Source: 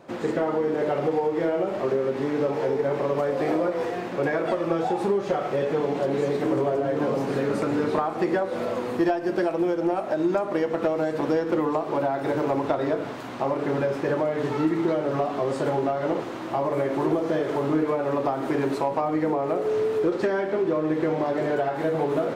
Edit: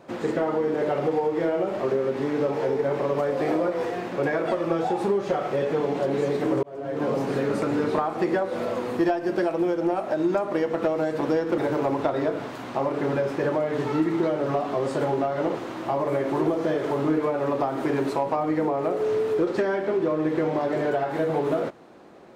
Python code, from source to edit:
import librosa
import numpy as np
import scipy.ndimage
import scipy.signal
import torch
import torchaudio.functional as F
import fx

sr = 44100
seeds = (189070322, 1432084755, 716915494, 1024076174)

y = fx.edit(x, sr, fx.fade_in_span(start_s=6.63, length_s=0.47),
    fx.cut(start_s=11.58, length_s=0.65), tone=tone)